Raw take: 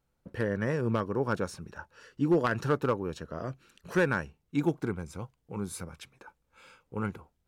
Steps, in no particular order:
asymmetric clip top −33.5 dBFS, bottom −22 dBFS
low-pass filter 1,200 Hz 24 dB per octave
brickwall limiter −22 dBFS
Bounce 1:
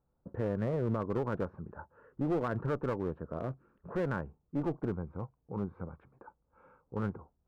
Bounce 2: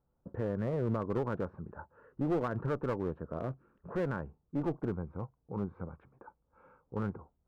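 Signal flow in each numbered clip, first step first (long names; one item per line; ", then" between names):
low-pass filter, then brickwall limiter, then asymmetric clip
brickwall limiter, then low-pass filter, then asymmetric clip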